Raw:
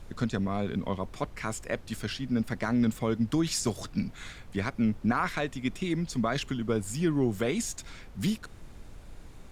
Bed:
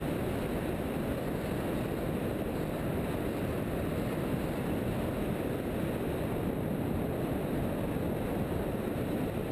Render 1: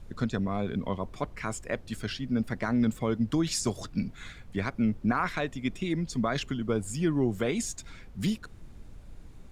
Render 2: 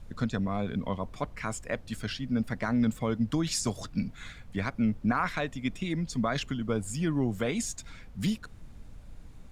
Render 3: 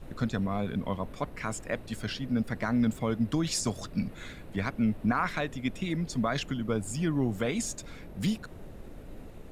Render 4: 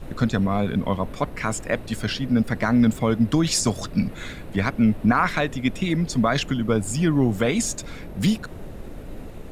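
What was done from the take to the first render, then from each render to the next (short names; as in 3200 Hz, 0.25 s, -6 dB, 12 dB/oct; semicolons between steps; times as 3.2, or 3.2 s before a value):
denoiser 6 dB, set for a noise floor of -48 dBFS
bell 370 Hz -6.5 dB 0.35 oct
add bed -16.5 dB
gain +8.5 dB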